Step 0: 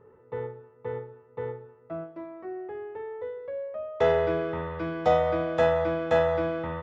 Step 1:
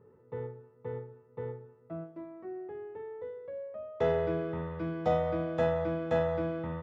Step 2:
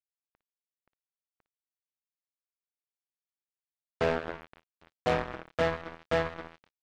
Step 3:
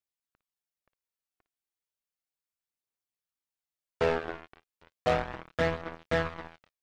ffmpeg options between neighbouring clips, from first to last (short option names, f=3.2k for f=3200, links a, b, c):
-af "equalizer=f=170:t=o:w=2.4:g=9.5,volume=-9dB"
-af "acrusher=bits=3:mix=0:aa=0.5"
-af "aphaser=in_gain=1:out_gain=1:delay=2.9:decay=0.32:speed=0.34:type=triangular"